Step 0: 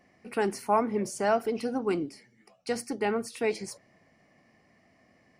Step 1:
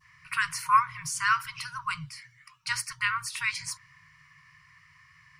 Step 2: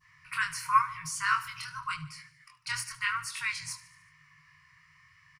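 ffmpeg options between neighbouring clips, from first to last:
ffmpeg -i in.wav -af "adynamicequalizer=threshold=0.00501:dfrequency=2100:dqfactor=0.91:tfrequency=2100:tqfactor=0.91:attack=5:release=100:ratio=0.375:range=2:mode=cutabove:tftype=bell,afftfilt=real='re*(1-between(b*sr/4096,170,930))':imag='im*(1-between(b*sr/4096,170,930))':win_size=4096:overlap=0.75,equalizer=frequency=1300:width=0.36:gain=5,volume=6dB" out.wav
ffmpeg -i in.wav -af "flanger=delay=19:depth=6.6:speed=0.92,aecho=1:1:74|148|222|296|370:0.141|0.0805|0.0459|0.0262|0.0149" out.wav

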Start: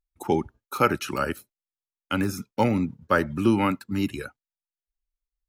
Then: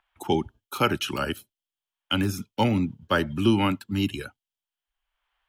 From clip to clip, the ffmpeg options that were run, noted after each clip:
ffmpeg -i in.wav -filter_complex "[0:a]equalizer=frequency=100:width_type=o:width=0.33:gain=4,equalizer=frequency=500:width_type=o:width=0.33:gain=-5,equalizer=frequency=1250:width_type=o:width=0.33:gain=-4,equalizer=frequency=2000:width_type=o:width=0.33:gain=-3,equalizer=frequency=3150:width_type=o:width=0.33:gain=12,acrossover=split=250|740|2000[link_01][link_02][link_03][link_04];[link_03]acompressor=mode=upward:threshold=-51dB:ratio=2.5[link_05];[link_01][link_02][link_05][link_04]amix=inputs=4:normalize=0" out.wav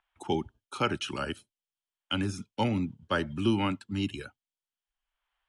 ffmpeg -i in.wav -af "aresample=22050,aresample=44100,volume=-5.5dB" out.wav

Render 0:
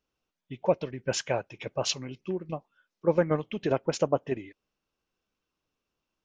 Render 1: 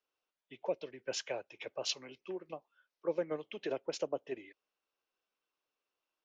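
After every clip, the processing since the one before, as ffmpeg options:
ffmpeg -i in.wav -filter_complex "[0:a]acrossover=split=360 6300:gain=0.0891 1 0.178[link_01][link_02][link_03];[link_01][link_02][link_03]amix=inputs=3:normalize=0,acrossover=split=110|510|2600[link_04][link_05][link_06][link_07];[link_06]acompressor=threshold=-42dB:ratio=6[link_08];[link_04][link_05][link_08][link_07]amix=inputs=4:normalize=0,volume=-3.5dB" out.wav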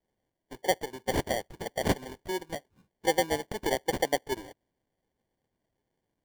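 ffmpeg -i in.wav -af "adynamicequalizer=threshold=0.002:dfrequency=4000:dqfactor=1.3:tfrequency=4000:tqfactor=1.3:attack=5:release=100:ratio=0.375:range=2.5:mode=boostabove:tftype=bell,acrusher=samples=34:mix=1:aa=0.000001,volume=8dB" out.wav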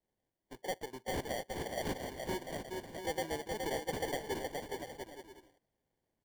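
ffmpeg -i in.wav -af "asoftclip=type=tanh:threshold=-25.5dB,aecho=1:1:420|693|870.4|985.8|1061:0.631|0.398|0.251|0.158|0.1,volume=-5.5dB" out.wav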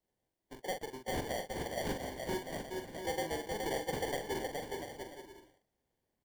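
ffmpeg -i in.wav -filter_complex "[0:a]asplit=2[link_01][link_02];[link_02]adelay=43,volume=-7dB[link_03];[link_01][link_03]amix=inputs=2:normalize=0" out.wav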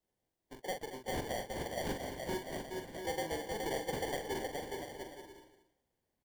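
ffmpeg -i in.wav -af "aecho=1:1:227:0.224,volume=-1dB" out.wav

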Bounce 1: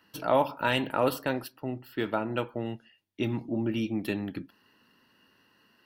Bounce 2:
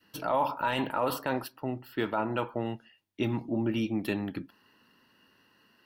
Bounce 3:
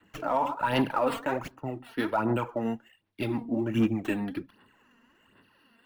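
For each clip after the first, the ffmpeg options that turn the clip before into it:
ffmpeg -i in.wav -af "adynamicequalizer=threshold=0.00794:dfrequency=990:dqfactor=1.4:tfrequency=990:tqfactor=1.4:attack=5:release=100:ratio=0.375:range=4:mode=boostabove:tftype=bell,alimiter=limit=-18dB:level=0:latency=1:release=15" out.wav
ffmpeg -i in.wav -filter_complex "[0:a]acrossover=split=260|920|3300[link_01][link_02][link_03][link_04];[link_04]acrusher=samples=8:mix=1:aa=0.000001:lfo=1:lforange=4.8:lforate=0.85[link_05];[link_01][link_02][link_03][link_05]amix=inputs=4:normalize=0,aphaser=in_gain=1:out_gain=1:delay=4.4:decay=0.58:speed=1.3:type=sinusoidal,asoftclip=type=hard:threshold=-16.5dB" out.wav

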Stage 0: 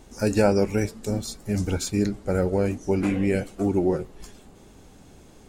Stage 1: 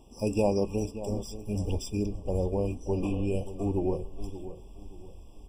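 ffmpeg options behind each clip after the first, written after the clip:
ffmpeg -i in.wav -filter_complex "[0:a]asubboost=boost=6:cutoff=70,asplit=2[link_01][link_02];[link_02]adelay=579,lowpass=frequency=2500:poles=1,volume=-13dB,asplit=2[link_03][link_04];[link_04]adelay=579,lowpass=frequency=2500:poles=1,volume=0.35,asplit=2[link_05][link_06];[link_06]adelay=579,lowpass=frequency=2500:poles=1,volume=0.35[link_07];[link_01][link_03][link_05][link_07]amix=inputs=4:normalize=0,afftfilt=real='re*eq(mod(floor(b*sr/1024/1200),2),0)':imag='im*eq(mod(floor(b*sr/1024/1200),2),0)':win_size=1024:overlap=0.75,volume=-5.5dB" out.wav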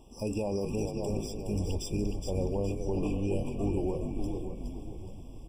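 ffmpeg -i in.wav -filter_complex "[0:a]alimiter=limit=-23.5dB:level=0:latency=1:release=37,asplit=2[link_01][link_02];[link_02]asplit=5[link_03][link_04][link_05][link_06][link_07];[link_03]adelay=417,afreqshift=-55,volume=-5.5dB[link_08];[link_04]adelay=834,afreqshift=-110,volume=-13.5dB[link_09];[link_05]adelay=1251,afreqshift=-165,volume=-21.4dB[link_10];[link_06]adelay=1668,afreqshift=-220,volume=-29.4dB[link_11];[link_07]adelay=2085,afreqshift=-275,volume=-37.3dB[link_12];[link_08][link_09][link_10][link_11][link_12]amix=inputs=5:normalize=0[link_13];[link_01][link_13]amix=inputs=2:normalize=0" out.wav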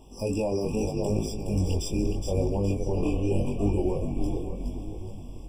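ffmpeg -i in.wav -af "flanger=delay=19:depth=4.3:speed=0.8,volume=7.5dB" out.wav

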